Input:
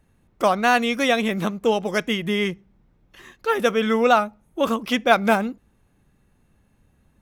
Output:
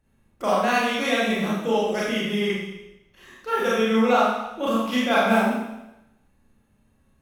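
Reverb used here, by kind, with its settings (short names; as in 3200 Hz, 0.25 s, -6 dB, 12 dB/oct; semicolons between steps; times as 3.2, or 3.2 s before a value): Schroeder reverb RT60 0.92 s, combs from 28 ms, DRR -7.5 dB; gain -9.5 dB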